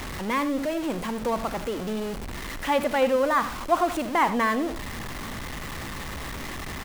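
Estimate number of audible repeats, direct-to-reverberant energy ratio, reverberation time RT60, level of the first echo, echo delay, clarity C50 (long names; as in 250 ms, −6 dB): 1, no reverb audible, no reverb audible, −14.0 dB, 78 ms, no reverb audible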